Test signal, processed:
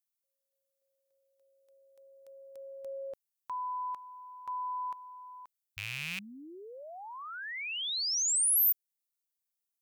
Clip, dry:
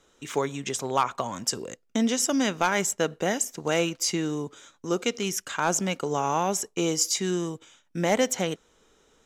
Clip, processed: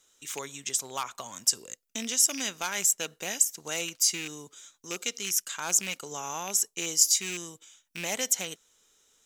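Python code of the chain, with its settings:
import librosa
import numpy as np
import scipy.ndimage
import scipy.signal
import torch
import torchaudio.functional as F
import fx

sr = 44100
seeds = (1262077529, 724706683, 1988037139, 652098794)

y = fx.rattle_buzz(x, sr, strikes_db=-33.0, level_db=-21.0)
y = F.preemphasis(torch.from_numpy(y), 0.9).numpy()
y = y * librosa.db_to_amplitude(5.0)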